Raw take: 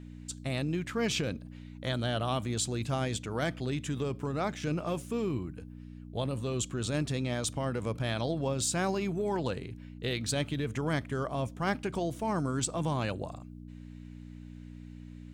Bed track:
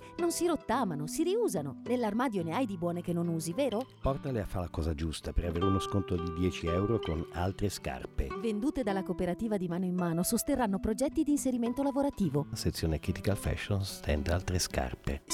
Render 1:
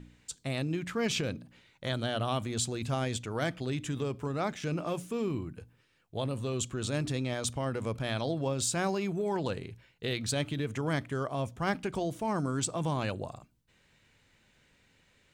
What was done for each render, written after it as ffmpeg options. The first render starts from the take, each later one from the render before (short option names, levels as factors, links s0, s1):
-af "bandreject=f=60:t=h:w=4,bandreject=f=120:t=h:w=4,bandreject=f=180:t=h:w=4,bandreject=f=240:t=h:w=4,bandreject=f=300:t=h:w=4"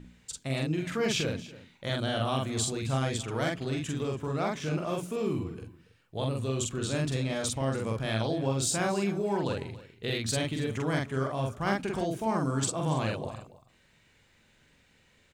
-filter_complex "[0:a]asplit=2[s0][s1];[s1]adelay=45,volume=0.794[s2];[s0][s2]amix=inputs=2:normalize=0,aecho=1:1:281:0.126"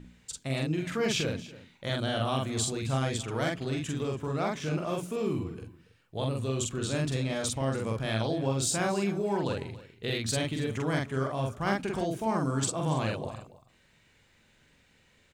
-af anull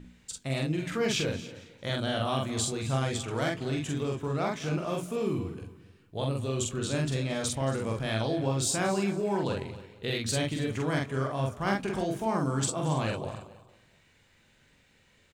-filter_complex "[0:a]asplit=2[s0][s1];[s1]adelay=21,volume=0.251[s2];[s0][s2]amix=inputs=2:normalize=0,aecho=1:1:226|452|678:0.119|0.044|0.0163"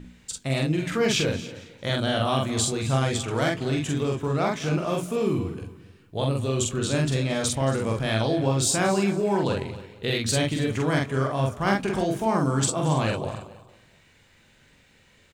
-af "volume=1.88"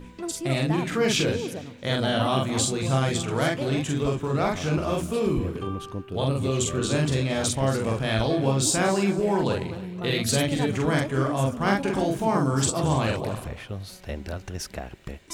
-filter_complex "[1:a]volume=0.708[s0];[0:a][s0]amix=inputs=2:normalize=0"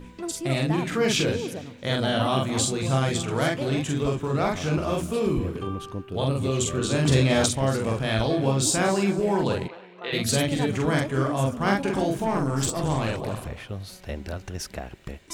-filter_complex "[0:a]asettb=1/sr,asplit=3[s0][s1][s2];[s0]atrim=end=7.054[s3];[s1]atrim=start=7.05:end=7.46,asetpts=PTS-STARTPTS,afade=t=in:d=0.004:c=qsin,afade=t=out:st=0.406:d=0.004:c=qsin,acontrast=36[s4];[s2]atrim=start=7.456[s5];[s3][s4]acrossfade=d=0.004:c1=hsin:c2=qsin[s6];[s6][s5]acrossfade=d=0.004:c1=qsin:c2=hsin,asplit=3[s7][s8][s9];[s7]afade=t=out:st=9.67:d=0.02[s10];[s8]highpass=580,lowpass=3100,afade=t=in:st=9.67:d=0.02,afade=t=out:st=10.12:d=0.02[s11];[s9]afade=t=in:st=10.12:d=0.02[s12];[s10][s11][s12]amix=inputs=3:normalize=0,asettb=1/sr,asplit=3[s13][s14][s15];[s13]atrim=end=12.244[s16];[s14]atrim=start=12.24:end=13.28,asetpts=PTS-STARTPTS,afade=t=in:d=0.004:c=qsin,afade=t=out:st=1.036:d=0.004:c=qsin,aeval=exprs='(tanh(7.08*val(0)+0.4)-tanh(0.4))/7.08':c=same[s17];[s15]atrim=start=13.276[s18];[s16][s17]acrossfade=d=0.004:c1=hsin:c2=qsin[s19];[s19][s18]acrossfade=d=0.004:c1=qsin:c2=hsin"